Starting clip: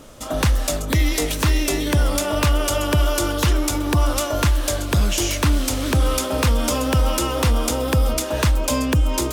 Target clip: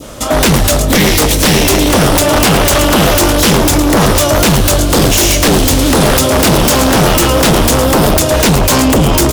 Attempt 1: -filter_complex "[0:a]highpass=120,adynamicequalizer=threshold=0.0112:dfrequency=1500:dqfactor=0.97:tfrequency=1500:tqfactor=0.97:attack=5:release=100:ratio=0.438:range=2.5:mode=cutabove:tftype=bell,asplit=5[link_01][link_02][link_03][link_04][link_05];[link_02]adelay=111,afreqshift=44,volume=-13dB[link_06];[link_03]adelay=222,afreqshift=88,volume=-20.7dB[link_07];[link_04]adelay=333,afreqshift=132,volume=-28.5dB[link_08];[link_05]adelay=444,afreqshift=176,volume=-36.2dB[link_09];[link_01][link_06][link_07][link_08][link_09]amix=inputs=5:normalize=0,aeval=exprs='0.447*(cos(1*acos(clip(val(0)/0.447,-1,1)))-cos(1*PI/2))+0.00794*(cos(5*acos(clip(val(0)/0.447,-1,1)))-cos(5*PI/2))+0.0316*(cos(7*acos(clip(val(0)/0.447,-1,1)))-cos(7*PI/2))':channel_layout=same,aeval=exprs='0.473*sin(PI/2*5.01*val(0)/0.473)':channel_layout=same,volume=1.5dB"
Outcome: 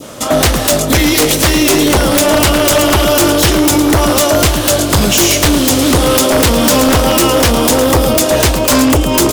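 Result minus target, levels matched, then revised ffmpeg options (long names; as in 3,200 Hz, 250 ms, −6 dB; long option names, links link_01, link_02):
125 Hz band −3.0 dB
-filter_complex "[0:a]highpass=31,adynamicequalizer=threshold=0.0112:dfrequency=1500:dqfactor=0.97:tfrequency=1500:tqfactor=0.97:attack=5:release=100:ratio=0.438:range=2.5:mode=cutabove:tftype=bell,asplit=5[link_01][link_02][link_03][link_04][link_05];[link_02]adelay=111,afreqshift=44,volume=-13dB[link_06];[link_03]adelay=222,afreqshift=88,volume=-20.7dB[link_07];[link_04]adelay=333,afreqshift=132,volume=-28.5dB[link_08];[link_05]adelay=444,afreqshift=176,volume=-36.2dB[link_09];[link_01][link_06][link_07][link_08][link_09]amix=inputs=5:normalize=0,aeval=exprs='0.447*(cos(1*acos(clip(val(0)/0.447,-1,1)))-cos(1*PI/2))+0.00794*(cos(5*acos(clip(val(0)/0.447,-1,1)))-cos(5*PI/2))+0.0316*(cos(7*acos(clip(val(0)/0.447,-1,1)))-cos(7*PI/2))':channel_layout=same,aeval=exprs='0.473*sin(PI/2*5.01*val(0)/0.473)':channel_layout=same,volume=1.5dB"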